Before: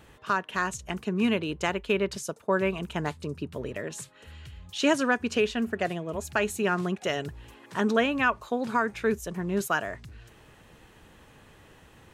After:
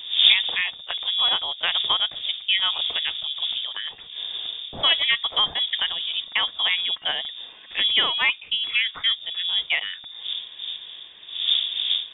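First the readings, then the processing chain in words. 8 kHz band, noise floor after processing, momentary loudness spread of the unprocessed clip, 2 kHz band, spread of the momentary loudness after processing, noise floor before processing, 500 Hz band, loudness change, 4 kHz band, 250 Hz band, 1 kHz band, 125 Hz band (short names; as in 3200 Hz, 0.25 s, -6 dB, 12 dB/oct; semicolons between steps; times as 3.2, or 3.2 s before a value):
under -40 dB, -44 dBFS, 12 LU, +4.5 dB, 13 LU, -55 dBFS, -14.0 dB, +6.5 dB, +21.5 dB, -22.0 dB, -3.0 dB, under -15 dB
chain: wind noise 280 Hz -34 dBFS; inverted band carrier 3600 Hz; gain +3 dB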